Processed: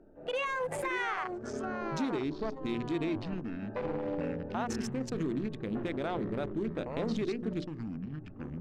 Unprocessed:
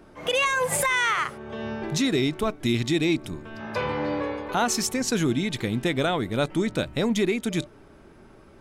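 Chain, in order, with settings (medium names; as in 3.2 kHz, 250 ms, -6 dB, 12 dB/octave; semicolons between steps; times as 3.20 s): local Wiener filter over 41 samples; low-pass 1.2 kHz 6 dB/octave; peaking EQ 100 Hz -12 dB 2.4 oct; hum notches 60/120/180/240/300/360/420/480/540 Hz; peak limiter -25.5 dBFS, peak gain reduction 8.5 dB; ever faster or slower copies 435 ms, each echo -6 st, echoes 2, each echo -6 dB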